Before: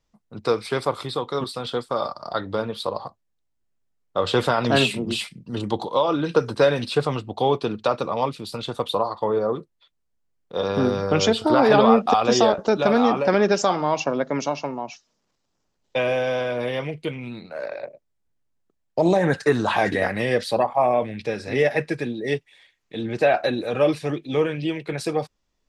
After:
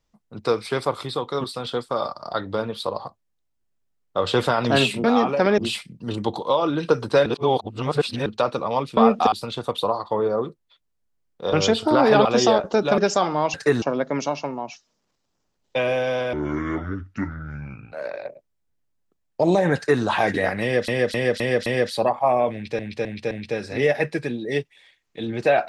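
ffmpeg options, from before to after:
-filter_complex "[0:a]asplit=21[s0][s1][s2][s3][s4][s5][s6][s7][s8][s9][s10][s11][s12][s13][s14][s15][s16][s17][s18][s19][s20];[s0]atrim=end=5.042[s21];[s1]atrim=start=12.918:end=13.462[s22];[s2]atrim=start=5.038:end=6.722[s23];[s3]atrim=start=6.718:end=7.722,asetpts=PTS-STARTPTS,areverse[s24];[s4]atrim=start=7.718:end=8.432[s25];[s5]atrim=start=11.838:end=12.192[s26];[s6]atrim=start=8.428:end=10.642[s27];[s7]atrim=start=11.118:end=11.842[s28];[s8]atrim=start=12.188:end=12.922[s29];[s9]atrim=start=13.458:end=14.022[s30];[s10]atrim=start=19.338:end=19.622[s31];[s11]atrim=start=14.018:end=16.534[s32];[s12]atrim=start=16.53:end=17.5,asetpts=PTS-STARTPTS,asetrate=26901,aresample=44100,atrim=end_sample=70126,asetpts=PTS-STARTPTS[s33];[s13]atrim=start=17.496:end=20.462[s34];[s14]atrim=start=20.198:end=20.462[s35];[s15]atrim=start=20.198:end=20.462[s36];[s16]atrim=start=20.198:end=20.462[s37];[s17]atrim=start=20.198:end=21.332[s38];[s18]atrim=start=21.068:end=21.332[s39];[s19]atrim=start=21.068:end=21.332[s40];[s20]atrim=start=21.068[s41];[s21][s22]acrossfade=d=0.004:c1=hsin:c2=hsin[s42];[s42][s23]acrossfade=d=0.004:c1=hsin:c2=hsin[s43];[s43][s24]acrossfade=d=0.004:c1=hsin:c2=hsin[s44];[s44][s25]acrossfade=d=0.004:c1=hsin:c2=hsin[s45];[s45][s26]acrossfade=d=0.004:c1=hsin:c2=hsin[s46];[s46][s27]acrossfade=d=0.004:c1=hsin:c2=hsin[s47];[s47][s28]acrossfade=d=0.004:c1=hsin:c2=hsin[s48];[s48][s29]acrossfade=d=0.004:c1=hsin:c2=hsin[s49];[s49][s30]acrossfade=d=0.004:c1=hsin:c2=hsin[s50];[s50][s31]acrossfade=d=0.004:c1=hsin:c2=hsin[s51];[s51][s32]acrossfade=d=0.004:c1=hsin:c2=hsin[s52];[s52][s33]acrossfade=d=0.004:c1=hsin:c2=hsin[s53];[s53][s34]acrossfade=d=0.004:c1=hsin:c2=hsin[s54];[s54][s35]acrossfade=d=0.004:c1=hsin:c2=hsin[s55];[s55][s36]acrossfade=d=0.004:c1=hsin:c2=hsin[s56];[s56][s37]acrossfade=d=0.004:c1=hsin:c2=hsin[s57];[s57][s38]acrossfade=d=0.004:c1=hsin:c2=hsin[s58];[s58][s39]acrossfade=d=0.004:c1=hsin:c2=hsin[s59];[s59][s40]acrossfade=d=0.004:c1=hsin:c2=hsin[s60];[s60][s41]acrossfade=d=0.004:c1=hsin:c2=hsin"

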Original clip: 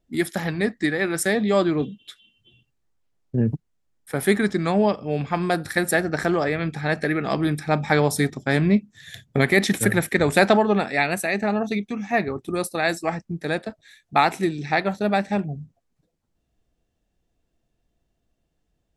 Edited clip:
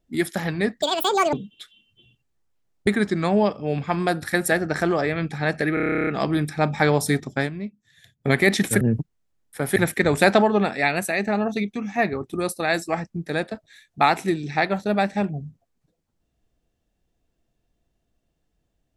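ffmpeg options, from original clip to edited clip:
-filter_complex "[0:a]asplit=19[s0][s1][s2][s3][s4][s5][s6][s7][s8][s9][s10][s11][s12][s13][s14][s15][s16][s17][s18];[s0]atrim=end=0.824[s19];[s1]atrim=start=0.82:end=1.81,asetpts=PTS-STARTPTS,asetrate=85554,aresample=44100[s20];[s2]atrim=start=1.806:end=3.352[s21];[s3]atrim=start=4.298:end=7.202[s22];[s4]atrim=start=7.168:end=7.202[s23];[s5]atrim=start=7.168:end=7.202[s24];[s6]atrim=start=7.168:end=7.202[s25];[s7]atrim=start=7.168:end=7.202[s26];[s8]atrim=start=7.168:end=7.202[s27];[s9]atrim=start=7.168:end=7.202[s28];[s10]atrim=start=7.168:end=7.202[s29];[s11]atrim=start=7.168:end=7.202[s30];[s12]atrim=start=7.168:end=7.202[s31];[s13]atrim=start=7.168:end=7.202[s32];[s14]atrim=start=7.168:end=8.6,asetpts=PTS-STARTPTS,afade=t=out:st=1.312:d=0.12:silence=0.211349[s33];[s15]atrim=start=8.6:end=9.29,asetpts=PTS-STARTPTS,volume=0.211[s34];[s16]atrim=start=9.29:end=9.912,asetpts=PTS-STARTPTS,afade=t=in:d=0.12:silence=0.211349[s35];[s17]atrim=start=3.348:end=4.302[s36];[s18]atrim=start=9.908[s37];[s19][s20]acrossfade=d=0.004:c1=hsin:c2=hsin[s38];[s38][s21]acrossfade=d=0.004:c1=hsin:c2=hsin[s39];[s39][s22]acrossfade=d=0.004:c1=hsin:c2=hsin[s40];[s40][s23]acrossfade=d=0.004:c1=hsin:c2=hsin[s41];[s41][s24]acrossfade=d=0.004:c1=hsin:c2=hsin[s42];[s42][s25]acrossfade=d=0.004:c1=hsin:c2=hsin[s43];[s43][s26]acrossfade=d=0.004:c1=hsin:c2=hsin[s44];[s44][s27]acrossfade=d=0.004:c1=hsin:c2=hsin[s45];[s45][s28]acrossfade=d=0.004:c1=hsin:c2=hsin[s46];[s46][s29]acrossfade=d=0.004:c1=hsin:c2=hsin[s47];[s47][s30]acrossfade=d=0.004:c1=hsin:c2=hsin[s48];[s48][s31]acrossfade=d=0.004:c1=hsin:c2=hsin[s49];[s49][s32]acrossfade=d=0.004:c1=hsin:c2=hsin[s50];[s33][s34][s35]concat=n=3:v=0:a=1[s51];[s50][s51]acrossfade=d=0.004:c1=hsin:c2=hsin[s52];[s52][s36]acrossfade=d=0.004:c1=hsin:c2=hsin[s53];[s53][s37]acrossfade=d=0.004:c1=hsin:c2=hsin"

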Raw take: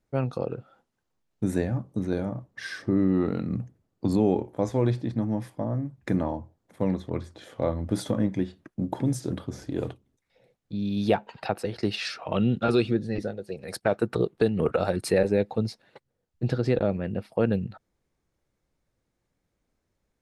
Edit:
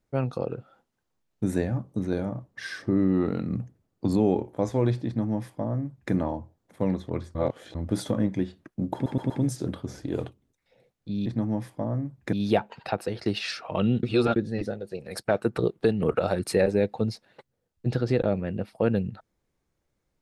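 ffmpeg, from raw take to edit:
-filter_complex "[0:a]asplit=10[s0][s1][s2][s3][s4][s5][s6][s7][s8][s9];[s0]atrim=end=7.352[s10];[s1]atrim=start=7.348:end=7.752,asetpts=PTS-STARTPTS,areverse[s11];[s2]atrim=start=7.748:end=9.062[s12];[s3]atrim=start=8.938:end=9.062[s13];[s4]atrim=start=8.938:end=9.062[s14];[s5]atrim=start=8.938:end=10.902[s15];[s6]atrim=start=5.058:end=6.132[s16];[s7]atrim=start=10.898:end=12.602[s17];[s8]atrim=start=12.598:end=12.932,asetpts=PTS-STARTPTS,areverse[s18];[s9]atrim=start=12.928[s19];[s10][s11]acrossfade=d=0.004:c1=hsin:c2=hsin[s20];[s20][s12]acrossfade=d=0.004:c1=hsin:c2=hsin[s21];[s21][s13]acrossfade=d=0.004:c1=hsin:c2=hsin[s22];[s22][s14]acrossfade=d=0.004:c1=hsin:c2=hsin[s23];[s23][s15]acrossfade=d=0.004:c1=hsin:c2=hsin[s24];[s24][s16]acrossfade=d=0.004:c1=hsin:c2=hsin[s25];[s25][s17]acrossfade=d=0.004:c1=hsin:c2=hsin[s26];[s26][s18]acrossfade=d=0.004:c1=hsin:c2=hsin[s27];[s27][s19]acrossfade=d=0.004:c1=hsin:c2=hsin"

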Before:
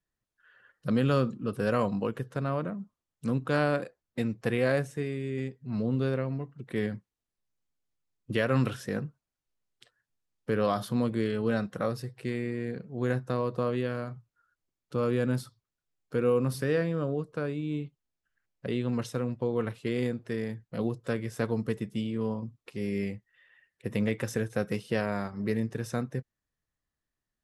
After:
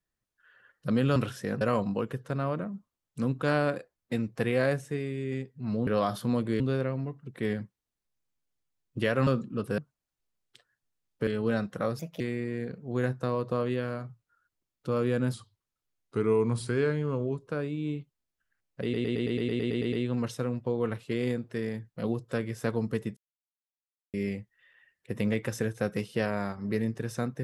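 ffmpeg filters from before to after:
-filter_complex "[0:a]asplit=24[s0][s1][s2][s3][s4][s5][s6][s7][s8][s9][s10][s11][s12][s13][s14][s15][s16][s17][s18][s19][s20][s21][s22][s23];[s0]atrim=end=1.162[s24];[s1]atrim=start=8.598:end=9.052[s25];[s2]atrim=start=1.668:end=5.932[s26];[s3]atrim=start=10.538:end=11.272[s27];[s4]atrim=start=5.928:end=8.602[s28];[s5]atrim=start=1.158:end=1.672[s29];[s6]atrim=start=9.048:end=10.542[s30];[s7]atrim=start=11.268:end=11.994[s31];[s8]atrim=start=11.99:end=12.27,asetpts=PTS-STARTPTS,asetrate=57771,aresample=44100[s32];[s9]atrim=start=12.266:end=15.404[s33];[s10]atrim=start=15.4:end=17.32,asetpts=PTS-STARTPTS,asetrate=39690,aresample=44100[s34];[s11]atrim=start=17.316:end=18.792[s35];[s12]atrim=start=18.678:end=18.792[s36];[s13]atrim=start=18.678:end=18.792[s37];[s14]atrim=start=18.678:end=18.792[s38];[s15]atrim=start=18.678:end=18.792[s39];[s16]atrim=start=18.678:end=18.792[s40];[s17]atrim=start=18.678:end=18.792[s41];[s18]atrim=start=18.678:end=18.792[s42];[s19]atrim=start=18.678:end=18.792[s43];[s20]atrim=start=18.678:end=18.792[s44];[s21]atrim=start=18.678:end=21.92,asetpts=PTS-STARTPTS,afade=t=out:st=3.238:d=0.004:c=hsin[s45];[s22]atrim=start=21.92:end=22.89,asetpts=PTS-STARTPTS,volume=0[s46];[s23]atrim=start=22.89,asetpts=PTS-STARTPTS,afade=t=in:d=0.004:c=hsin[s47];[s24][s25]acrossfade=d=0.004:c1=hsin:c2=hsin[s48];[s48][s26]acrossfade=d=0.004:c1=hsin:c2=hsin[s49];[s49][s27]acrossfade=d=0.004:c1=hsin:c2=hsin[s50];[s50][s28]acrossfade=d=0.004:c1=hsin:c2=hsin[s51];[s51][s29]acrossfade=d=0.004:c1=hsin:c2=hsin[s52];[s52][s30]acrossfade=d=0.004:c1=hsin:c2=hsin[s53];[s53][s31]acrossfade=d=0.004:c1=hsin:c2=hsin[s54];[s54][s32]acrossfade=d=0.004:c1=hsin:c2=hsin[s55];[s55][s33]acrossfade=d=0.004:c1=hsin:c2=hsin[s56];[s56][s34]acrossfade=d=0.004:c1=hsin:c2=hsin[s57];[s57][s35]acrossfade=d=0.004:c1=hsin:c2=hsin[s58];[s58][s36]acrossfade=d=0.004:c1=hsin:c2=hsin[s59];[s59][s37]acrossfade=d=0.004:c1=hsin:c2=hsin[s60];[s60][s38]acrossfade=d=0.004:c1=hsin:c2=hsin[s61];[s61][s39]acrossfade=d=0.004:c1=hsin:c2=hsin[s62];[s62][s40]acrossfade=d=0.004:c1=hsin:c2=hsin[s63];[s63][s41]acrossfade=d=0.004:c1=hsin:c2=hsin[s64];[s64][s42]acrossfade=d=0.004:c1=hsin:c2=hsin[s65];[s65][s43]acrossfade=d=0.004:c1=hsin:c2=hsin[s66];[s66][s44]acrossfade=d=0.004:c1=hsin:c2=hsin[s67];[s45][s46][s47]concat=n=3:v=0:a=1[s68];[s67][s68]acrossfade=d=0.004:c1=hsin:c2=hsin"

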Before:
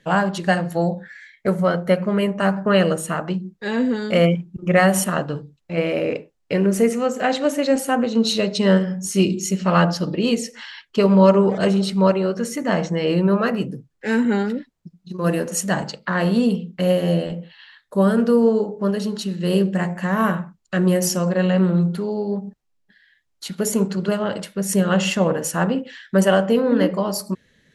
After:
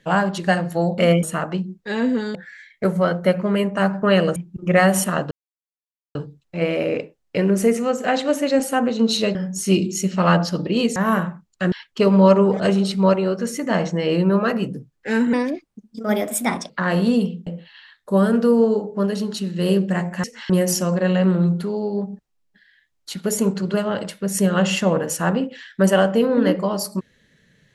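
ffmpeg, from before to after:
-filter_complex "[0:a]asplit=14[s0][s1][s2][s3][s4][s5][s6][s7][s8][s9][s10][s11][s12][s13];[s0]atrim=end=0.982[s14];[s1]atrim=start=4.108:end=4.362[s15];[s2]atrim=start=2.988:end=4.112[s16];[s3]atrim=start=0.978:end=2.992[s17];[s4]atrim=start=4.358:end=5.31,asetpts=PTS-STARTPTS,afade=t=out:st=0.948:d=0.004:c=hsin,apad=pad_dur=0.84[s18];[s5]atrim=start=5.31:end=8.512,asetpts=PTS-STARTPTS,afade=t=in:d=0.004:c=hsin[s19];[s6]atrim=start=8.828:end=10.442[s20];[s7]atrim=start=20.078:end=20.842[s21];[s8]atrim=start=10.698:end=14.314[s22];[s9]atrim=start=14.31:end=15.99,asetpts=PTS-STARTPTS,asetrate=54243,aresample=44100,atrim=end_sample=60234,asetpts=PTS-STARTPTS[s23];[s10]atrim=start=15.986:end=16.762[s24];[s11]atrim=start=17.308:end=20.082[s25];[s12]atrim=start=10.438:end=10.702[s26];[s13]atrim=start=20.838[s27];[s14][s15]acrossfade=d=0.004:c1=hsin:c2=hsin[s28];[s28][s16]acrossfade=d=0.004:c1=hsin:c2=hsin[s29];[s29][s17]acrossfade=d=0.004:c1=hsin:c2=hsin[s30];[s18][s19]concat=n=2:v=0:a=1[s31];[s30][s31]acrossfade=d=0.004:c1=hsin:c2=hsin[s32];[s32][s20]acrossfade=d=0.004:c1=hsin:c2=hsin[s33];[s33][s21]acrossfade=d=0.004:c1=hsin:c2=hsin[s34];[s34][s22]acrossfade=d=0.004:c1=hsin:c2=hsin[s35];[s35][s23]acrossfade=d=0.004:c1=hsin:c2=hsin[s36];[s36][s24]acrossfade=d=0.004:c1=hsin:c2=hsin[s37];[s37][s25]acrossfade=d=0.004:c1=hsin:c2=hsin[s38];[s38][s26]acrossfade=d=0.004:c1=hsin:c2=hsin[s39];[s39][s27]acrossfade=d=0.004:c1=hsin:c2=hsin"

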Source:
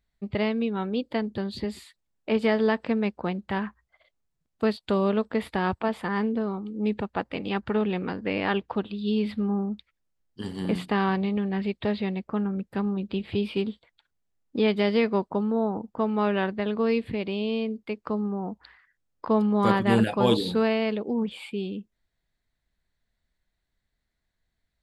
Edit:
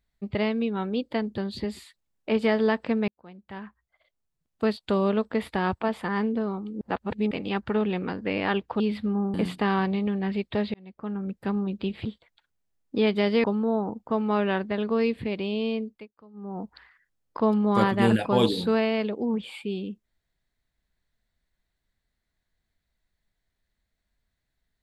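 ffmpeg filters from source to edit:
-filter_complex "[0:a]asplit=11[s0][s1][s2][s3][s4][s5][s6][s7][s8][s9][s10];[s0]atrim=end=3.08,asetpts=PTS-STARTPTS,afade=t=out:st=3.076:d=0.004:c=hsin[s11];[s1]atrim=start=3.08:end=6.812,asetpts=PTS-STARTPTS,afade=t=in:d=1.66[s12];[s2]atrim=start=6.808:end=7.312,asetpts=PTS-STARTPTS,areverse[s13];[s3]atrim=start=7.308:end=8.802[s14];[s4]atrim=start=9.138:end=9.682[s15];[s5]atrim=start=10.638:end=12.04,asetpts=PTS-STARTPTS,afade=t=out:st=1.398:d=0.004:c=hsin[s16];[s6]atrim=start=12.04:end=13.352,asetpts=PTS-STARTPTS,afade=t=in:d=0.65[s17];[s7]atrim=start=13.658:end=15.052[s18];[s8]atrim=start=15.318:end=17.97,asetpts=PTS-STARTPTS,afade=t=out:st=2.342:d=0.31:silence=0.0668344[s19];[s9]atrim=start=17.97:end=18.21,asetpts=PTS-STARTPTS,volume=0.0668[s20];[s10]atrim=start=18.21,asetpts=PTS-STARTPTS,afade=t=in:d=0.31:silence=0.0668344[s21];[s11][s12]concat=n=2:v=0:a=1[s22];[s22][s13]acrossfade=d=0.004:c1=hsin:c2=hsin[s23];[s23][s14]acrossfade=d=0.004:c1=hsin:c2=hsin[s24];[s24][s15]acrossfade=d=0.004:c1=hsin:c2=hsin[s25];[s16][s17]concat=n=2:v=0:a=1[s26];[s25][s26]acrossfade=d=0.004:c1=hsin:c2=hsin[s27];[s27][s18]acrossfade=d=0.004:c1=hsin:c2=hsin[s28];[s19][s20][s21]concat=n=3:v=0:a=1[s29];[s28][s29]acrossfade=d=0.004:c1=hsin:c2=hsin"

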